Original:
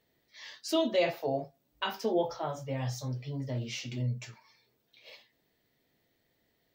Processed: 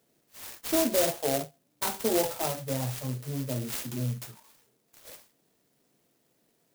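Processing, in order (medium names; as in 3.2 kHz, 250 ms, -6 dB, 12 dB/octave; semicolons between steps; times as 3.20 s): high-pass 130 Hz 24 dB/octave; in parallel at +2 dB: peak limiter -23.5 dBFS, peak gain reduction 7 dB; on the sum: sampling jitter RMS 0.15 ms; trim -2.5 dB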